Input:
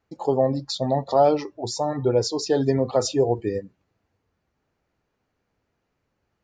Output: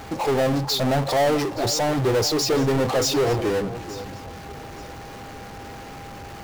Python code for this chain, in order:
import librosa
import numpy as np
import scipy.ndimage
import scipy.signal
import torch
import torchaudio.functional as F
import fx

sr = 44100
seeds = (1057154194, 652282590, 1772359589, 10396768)

y = fx.power_curve(x, sr, exponent=0.35)
y = y + 10.0 ** (-36.0 / 20.0) * np.sin(2.0 * np.pi * 800.0 * np.arange(len(y)) / sr)
y = fx.echo_alternate(y, sr, ms=436, hz=1500.0, feedback_pct=55, wet_db=-13.0)
y = y * librosa.db_to_amplitude(-7.0)